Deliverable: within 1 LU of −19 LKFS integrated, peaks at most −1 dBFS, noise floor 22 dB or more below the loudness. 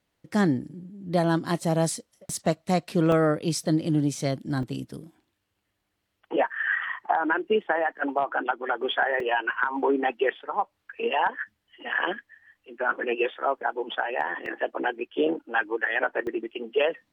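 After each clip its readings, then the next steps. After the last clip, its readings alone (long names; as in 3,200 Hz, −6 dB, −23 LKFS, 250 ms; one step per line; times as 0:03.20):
number of dropouts 5; longest dropout 2.2 ms; integrated loudness −26.5 LKFS; sample peak −10.0 dBFS; target loudness −19.0 LKFS
→ repair the gap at 0:03.12/0:04.63/0:09.20/0:14.46/0:16.27, 2.2 ms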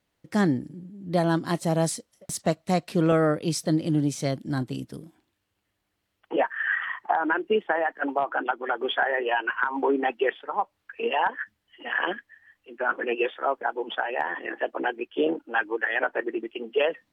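number of dropouts 0; integrated loudness −26.5 LKFS; sample peak −10.0 dBFS; target loudness −19.0 LKFS
→ level +7.5 dB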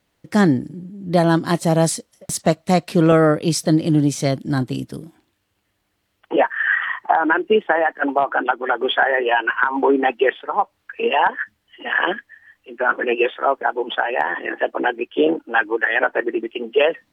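integrated loudness −19.0 LKFS; sample peak −2.5 dBFS; background noise floor −70 dBFS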